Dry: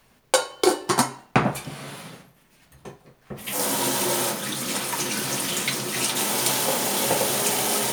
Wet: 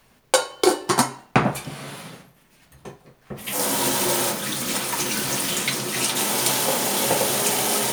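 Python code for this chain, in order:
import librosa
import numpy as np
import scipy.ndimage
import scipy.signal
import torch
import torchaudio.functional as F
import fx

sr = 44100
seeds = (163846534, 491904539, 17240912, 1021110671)

y = fx.block_float(x, sr, bits=3, at=(3.74, 5.57))
y = y * librosa.db_to_amplitude(1.5)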